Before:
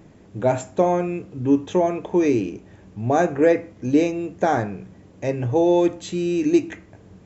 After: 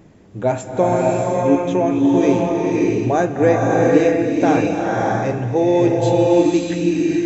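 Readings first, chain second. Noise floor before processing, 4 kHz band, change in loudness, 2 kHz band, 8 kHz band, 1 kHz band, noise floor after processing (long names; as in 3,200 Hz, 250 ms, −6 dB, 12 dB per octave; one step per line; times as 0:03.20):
−49 dBFS, +5.5 dB, +4.5 dB, +5.5 dB, can't be measured, +5.0 dB, −33 dBFS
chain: slow-attack reverb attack 610 ms, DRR −2.5 dB
level +1 dB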